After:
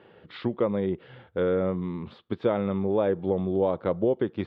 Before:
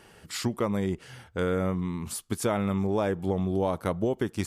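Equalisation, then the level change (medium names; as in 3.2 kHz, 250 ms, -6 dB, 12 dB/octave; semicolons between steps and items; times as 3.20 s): distance through air 450 m; cabinet simulation 110–4700 Hz, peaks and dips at 360 Hz +4 dB, 520 Hz +8 dB, 3.6 kHz +9 dB; 0.0 dB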